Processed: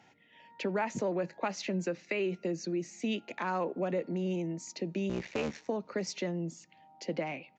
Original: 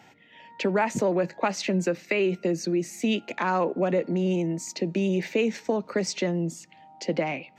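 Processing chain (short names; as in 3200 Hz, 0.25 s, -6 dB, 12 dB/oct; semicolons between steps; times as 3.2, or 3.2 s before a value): 5.09–5.69 cycle switcher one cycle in 3, muted; downsampling 16000 Hz; gain -8 dB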